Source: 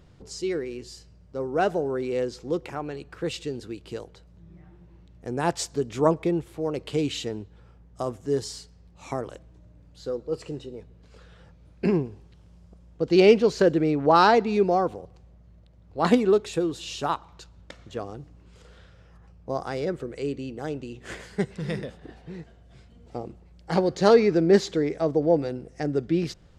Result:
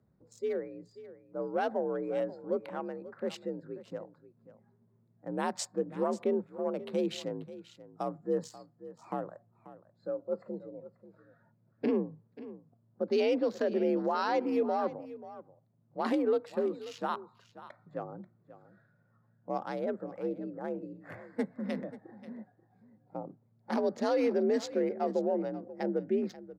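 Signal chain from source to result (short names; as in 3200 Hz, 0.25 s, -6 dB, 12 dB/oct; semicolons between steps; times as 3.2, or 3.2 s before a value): Wiener smoothing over 15 samples; frequency shift +55 Hz; limiter -16 dBFS, peak gain reduction 11 dB; spectral noise reduction 12 dB; echo 0.536 s -16 dB; gain -4.5 dB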